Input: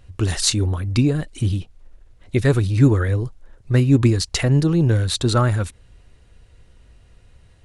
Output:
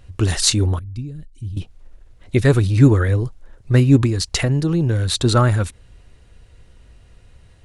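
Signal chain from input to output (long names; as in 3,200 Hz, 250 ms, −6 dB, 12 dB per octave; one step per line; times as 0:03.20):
0:00.79–0:01.57: guitar amp tone stack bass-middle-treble 10-0-1
0:03.97–0:05.24: downward compressor, threshold −17 dBFS, peak gain reduction 7 dB
level +2.5 dB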